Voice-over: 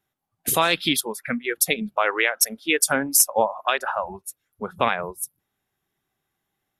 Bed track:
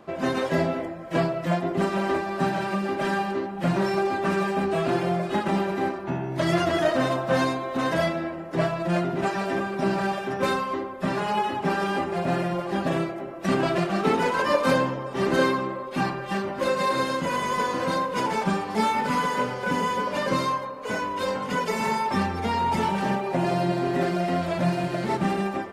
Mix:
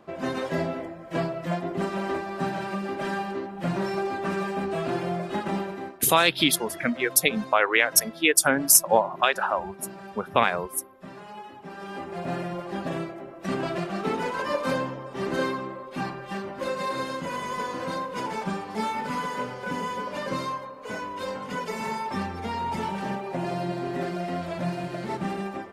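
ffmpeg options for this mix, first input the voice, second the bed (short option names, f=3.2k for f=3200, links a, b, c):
-filter_complex "[0:a]adelay=5550,volume=0.5dB[a];[1:a]volume=7dB,afade=t=out:st=5.54:d=0.44:silence=0.237137,afade=t=in:st=11.71:d=0.58:silence=0.281838[b];[a][b]amix=inputs=2:normalize=0"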